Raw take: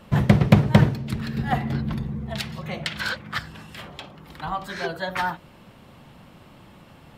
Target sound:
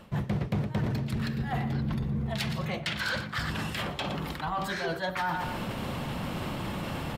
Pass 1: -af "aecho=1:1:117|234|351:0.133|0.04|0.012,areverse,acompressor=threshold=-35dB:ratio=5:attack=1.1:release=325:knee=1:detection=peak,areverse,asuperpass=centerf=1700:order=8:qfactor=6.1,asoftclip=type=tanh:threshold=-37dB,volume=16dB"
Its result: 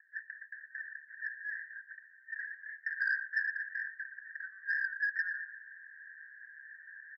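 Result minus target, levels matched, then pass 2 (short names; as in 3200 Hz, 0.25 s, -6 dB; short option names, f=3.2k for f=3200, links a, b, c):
2000 Hz band +7.5 dB; compressor: peak gain reduction -6 dB
-af "aecho=1:1:117|234|351:0.133|0.04|0.012,areverse,acompressor=threshold=-42.5dB:ratio=5:attack=1.1:release=325:knee=1:detection=peak,areverse,asoftclip=type=tanh:threshold=-37dB,volume=16dB"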